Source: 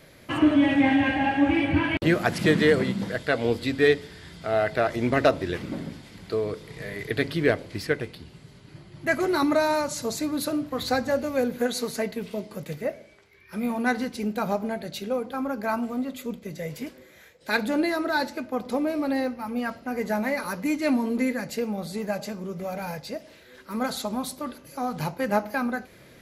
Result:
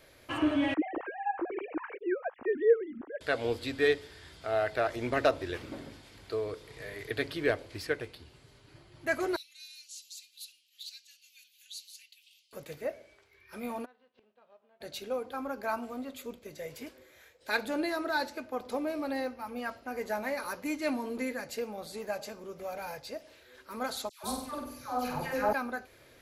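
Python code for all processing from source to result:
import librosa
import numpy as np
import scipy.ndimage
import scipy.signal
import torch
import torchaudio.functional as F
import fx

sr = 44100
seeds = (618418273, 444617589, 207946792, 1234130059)

y = fx.chain(x, sr, fx.sine_speech(),
    fx.lowpass(hz=1100.0, slope=12),
    fx.peak_eq(hz=640.0, db=-4.0, octaves=1.4), at=(0.74, 3.21))
y = fx.chain(y, sr, fx.ellip_highpass(hz=2800.0, order=4, stop_db=60),
    fx.high_shelf(hz=3900.0, db=-9.0), at=(9.36, 12.53))
y = fx.envelope_flatten(y, sr, power=0.6, at=(13.84, 14.8), fade=0.02)
y = fx.cabinet(y, sr, low_hz=180.0, low_slope=12, high_hz=3000.0, hz=(190.0, 290.0, 560.0, 810.0, 1500.0, 2200.0), db=(-5, -8, 6, -5, -5, -9), at=(13.84, 14.8), fade=0.02)
y = fx.gate_flip(y, sr, shuts_db=-31.0, range_db=-27, at=(13.84, 14.8), fade=0.02)
y = fx.chain(y, sr, fx.low_shelf(hz=130.0, db=9.5),
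    fx.dispersion(late='lows', ms=149.0, hz=1300.0),
    fx.room_flutter(wall_m=8.3, rt60_s=0.65), at=(24.09, 25.53))
y = fx.peak_eq(y, sr, hz=180.0, db=-14.5, octaves=0.81)
y = fx.notch(y, sr, hz=2000.0, q=23.0)
y = F.gain(torch.from_numpy(y), -5.0).numpy()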